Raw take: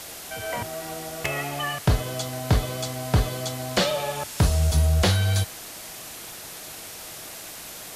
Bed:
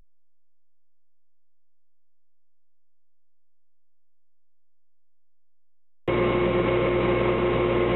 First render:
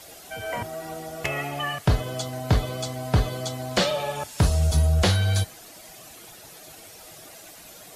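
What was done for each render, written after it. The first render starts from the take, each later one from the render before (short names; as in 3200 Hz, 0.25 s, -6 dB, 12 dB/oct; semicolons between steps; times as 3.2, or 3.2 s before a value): denoiser 10 dB, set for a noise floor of -40 dBFS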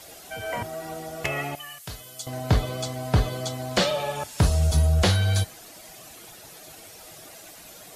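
1.55–2.27 pre-emphasis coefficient 0.9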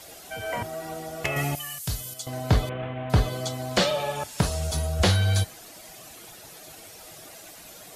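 1.36–2.14 tone controls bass +10 dB, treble +9 dB; 2.69–3.1 CVSD 16 kbps; 4.41–5 low shelf 210 Hz -10 dB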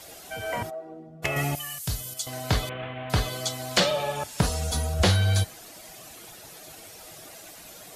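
0.69–1.22 band-pass 750 Hz -> 140 Hz, Q 2; 2.17–3.8 tilt shelf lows -5 dB, about 1100 Hz; 4.43–4.94 comb 4.1 ms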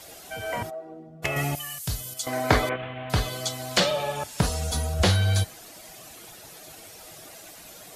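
2.23–2.76 spectral gain 230–2500 Hz +9 dB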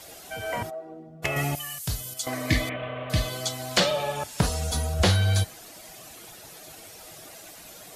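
2.36–3.23 spectral repair 350–1700 Hz after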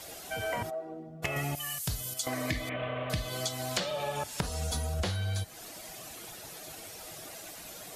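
compressor 12:1, threshold -29 dBFS, peak gain reduction 13 dB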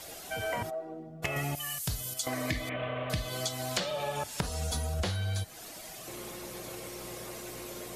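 add bed -22.5 dB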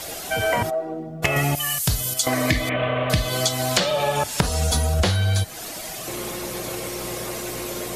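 gain +12 dB; limiter -2 dBFS, peak gain reduction 0.5 dB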